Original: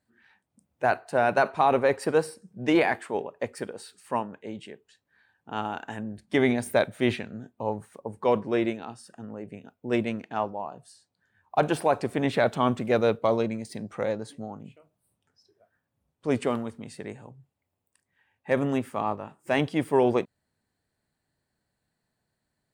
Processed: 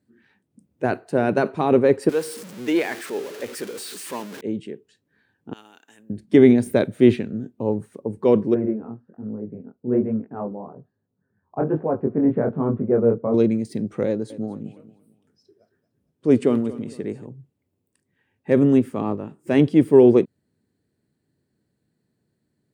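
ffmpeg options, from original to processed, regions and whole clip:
-filter_complex "[0:a]asettb=1/sr,asplit=3[s0][s1][s2];[s0]atrim=end=2.094[s3];[s1]atrim=start=2.09:end=4.41,asetpts=PTS-STARTPTS,afade=t=in:d=0.004:c=qsin,afade=t=out:st=2.316:d=0.004:c=qsin,aeval=exprs='val(0)+0.5*0.0335*sgn(val(0))':c=same,highpass=f=1200:p=1[s4];[s2]atrim=start=4.406[s5];[s3][s4]acrossfade=d=0.004:c1=hsin:c2=qsin[s6];[s6][s5]acrossfade=d=0.004:c1=qsin:c2=hsin,asettb=1/sr,asplit=3[s7][s8][s9];[s7]atrim=end=5.534[s10];[s8]atrim=start=5.53:end=6.1,asetpts=PTS-STARTPTS,afade=t=in:d=0.004:c=qsin,afade=t=out:st=0.566:d=0.004:c=qsin,aderivative,acrusher=bits=8:mode=log:mix=0:aa=0.000001[s11];[s9]atrim=start=6.096[s12];[s10][s11]acrossfade=d=0.004:c1=hsin:c2=qsin[s13];[s13][s12]acrossfade=d=0.004:c1=qsin:c2=hsin,asettb=1/sr,asplit=3[s14][s15][s16];[s14]atrim=end=8.544[s17];[s15]atrim=start=8.54:end=13.34,asetpts=PTS-STARTPTS,afade=t=in:d=0.004:c=qsin,afade=t=out:st=4.796:d=0.004:c=qsin,lowpass=f=1400:w=0.5412,lowpass=f=1400:w=1.3066,bandreject=f=330:w=7.7,flanger=delay=18:depth=7.7:speed=1.2[s18];[s16]atrim=start=13.336[s19];[s17][s18]acrossfade=d=0.004:c1=hsin:c2=qsin[s20];[s20][s19]acrossfade=d=0.004:c1=qsin:c2=hsin,asettb=1/sr,asplit=3[s21][s22][s23];[s21]atrim=end=14.074[s24];[s22]atrim=start=14.07:end=17.26,asetpts=PTS-STARTPTS,afade=t=in:d=0.004:c=qsin,afade=t=out:st=3.186:d=0.004:c=qsin,lowshelf=f=150:g=-4,aecho=1:1:228|456|684:0.141|0.0466|0.0154,atrim=end_sample=140679[s25];[s23]atrim=start=17.256[s26];[s24][s25]acrossfade=d=0.004:c1=hsin:c2=qsin[s27];[s27][s26]acrossfade=d=0.004:c1=qsin:c2=hsin,highpass=95,lowshelf=f=530:t=q:w=1.5:g=10.5,volume=0.891"

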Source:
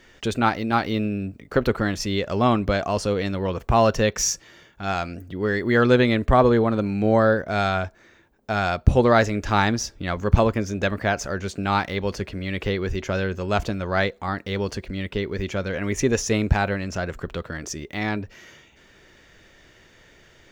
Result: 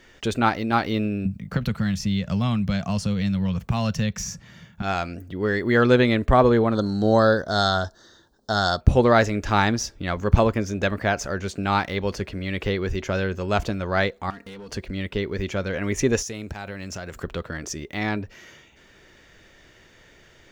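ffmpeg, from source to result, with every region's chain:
-filter_complex "[0:a]asettb=1/sr,asplit=3[s0][s1][s2];[s0]atrim=end=1.254[s3];[s1]atrim=start=1.25:end=4.82,asetpts=PTS-STARTPTS,afade=t=in:d=0.004:c=qsin,afade=t=out:st=3.566:d=0.004:c=qsin,highpass=56,lowshelf=f=250:t=q:w=3:g=10,acrossover=split=87|2100[s4][s5][s6];[s4]acompressor=threshold=0.0178:ratio=4[s7];[s5]acompressor=threshold=0.0631:ratio=4[s8];[s6]acompressor=threshold=0.0251:ratio=4[s9];[s7][s8][s9]amix=inputs=3:normalize=0[s10];[s2]atrim=start=4.816[s11];[s3][s10]acrossfade=d=0.004:c1=hsin:c2=qsin[s12];[s12][s11]acrossfade=d=0.004:c1=qsin:c2=hsin,asettb=1/sr,asplit=3[s13][s14][s15];[s13]atrim=end=6.754[s16];[s14]atrim=start=6.75:end=8.81,asetpts=PTS-STARTPTS,afade=t=in:d=0.004:c=qsin,afade=t=out:st=2.056:d=0.004:c=qsin,asuperstop=centerf=2400:order=4:qfactor=1.2,equalizer=f=4400:t=o:w=1.6:g=13.5[s17];[s15]atrim=start=8.806[s18];[s16][s17]acrossfade=d=0.004:c1=hsin:c2=qsin[s19];[s19][s18]acrossfade=d=0.004:c1=qsin:c2=hsin,asettb=1/sr,asplit=3[s20][s21][s22];[s20]atrim=end=14.304[s23];[s21]atrim=start=14.3:end=14.71,asetpts=PTS-STARTPTS,afade=t=in:d=0.004:c=qsin,afade=t=out:st=0.406:d=0.004:c=qsin,aecho=1:1:4.3:0.77,atrim=end_sample=18081,acompressor=threshold=0.02:ratio=10:attack=3.2:release=140:knee=1:detection=peak,asoftclip=type=hard:threshold=0.0168[s24];[s22]atrim=start=14.706[s25];[s23][s24]acrossfade=d=0.004:c1=hsin:c2=qsin[s26];[s26][s25]acrossfade=d=0.004:c1=qsin:c2=hsin,asettb=1/sr,asplit=3[s27][s28][s29];[s27]atrim=end=16.224[s30];[s28]atrim=start=16.22:end=17.24,asetpts=PTS-STARTPTS,afade=t=in:d=0.004:c=qsin,afade=t=out:st=1.016:d=0.004:c=qsin,highpass=49,highshelf=f=4600:g=10,acompressor=threshold=0.0316:ratio=6:attack=3.2:release=140:knee=1:detection=peak[s31];[s29]atrim=start=17.236[s32];[s30][s31]acrossfade=d=0.004:c1=hsin:c2=qsin[s33];[s33][s32]acrossfade=d=0.004:c1=qsin:c2=hsin"

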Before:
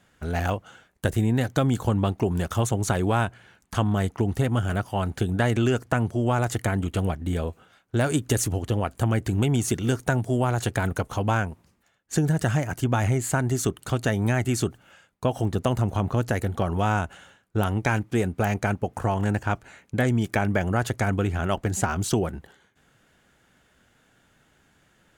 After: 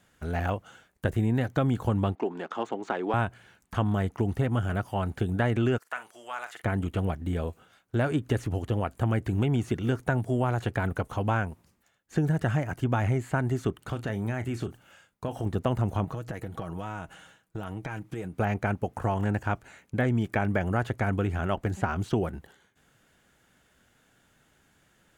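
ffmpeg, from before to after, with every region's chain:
-filter_complex "[0:a]asettb=1/sr,asplit=3[s0][s1][s2];[s0]atrim=end=2.154[s3];[s1]atrim=start=2.15:end=3.14,asetpts=PTS-STARTPTS,afade=t=in:d=0.004:c=qsin,afade=t=out:st=0.986:d=0.004:c=qsin,highpass=f=260:w=0.5412,highpass=f=260:w=1.3066,equalizer=f=590:t=q:w=4:g=-3,equalizer=f=850:t=q:w=4:g=3,equalizer=f=5700:t=q:w=4:g=-5,lowpass=f=7500:w=0.5412,lowpass=f=7500:w=1.3066,adynamicsmooth=sensitivity=3:basefreq=3500[s4];[s2]atrim=start=3.136[s5];[s3][s4]acrossfade=d=0.004:c1=hsin:c2=qsin[s6];[s6][s5]acrossfade=d=0.004:c1=qsin:c2=hsin,asettb=1/sr,asplit=3[s7][s8][s9];[s7]atrim=end=5.784[s10];[s8]atrim=start=5.78:end=6.64,asetpts=PTS-STARTPTS,afade=t=in:d=0.004:c=qsin,afade=t=out:st=0.856:d=0.004:c=qsin,highpass=1300,asplit=2[s11][s12];[s12]adelay=45,volume=0.251[s13];[s11][s13]amix=inputs=2:normalize=0,atrim=end_sample=37926[s14];[s9]atrim=start=6.636[s15];[s10][s14]acrossfade=d=0.004:c1=hsin:c2=qsin[s16];[s16][s15]acrossfade=d=0.004:c1=qsin:c2=hsin,asettb=1/sr,asplit=3[s17][s18][s19];[s17]atrim=end=13.894[s20];[s18]atrim=start=13.89:end=15.46,asetpts=PTS-STARTPTS,afade=t=in:d=0.004:c=qsin,afade=t=out:st=1.566:d=0.004:c=qsin,acompressor=threshold=0.0631:ratio=4:attack=3.2:release=140:knee=1:detection=peak,asplit=2[s21][s22];[s22]adelay=35,volume=0.224[s23];[s21][s23]amix=inputs=2:normalize=0,atrim=end_sample=69237[s24];[s19]atrim=start=15.456[s25];[s20][s24]acrossfade=d=0.004:c1=hsin:c2=qsin[s26];[s26][s25]acrossfade=d=0.004:c1=qsin:c2=hsin,asettb=1/sr,asplit=3[s27][s28][s29];[s27]atrim=end=16.044[s30];[s28]atrim=start=16.04:end=18.34,asetpts=PTS-STARTPTS,afade=t=in:d=0.004:c=qsin,afade=t=out:st=2.296:d=0.004:c=qsin,acompressor=threshold=0.0355:ratio=6:attack=3.2:release=140:knee=1:detection=peak,aecho=1:1:6.3:0.42,atrim=end_sample=101430[s31];[s29]atrim=start=18.336[s32];[s30][s31]acrossfade=d=0.004:c1=hsin:c2=qsin[s33];[s33][s32]acrossfade=d=0.004:c1=qsin:c2=hsin,acrossover=split=3100[s34][s35];[s35]acompressor=threshold=0.002:ratio=4:attack=1:release=60[s36];[s34][s36]amix=inputs=2:normalize=0,highshelf=f=8300:g=6,volume=0.708"

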